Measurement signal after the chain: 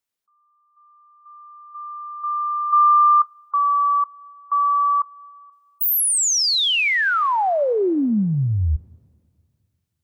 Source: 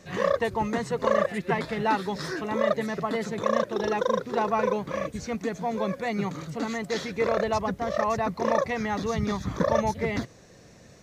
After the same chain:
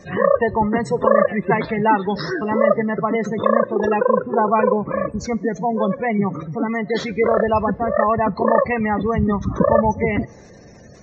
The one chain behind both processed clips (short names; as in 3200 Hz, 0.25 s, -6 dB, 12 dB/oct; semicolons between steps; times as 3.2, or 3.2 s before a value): spectral gate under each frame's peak -20 dB strong; two-slope reverb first 0.21 s, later 2.3 s, from -21 dB, DRR 17.5 dB; gain +8.5 dB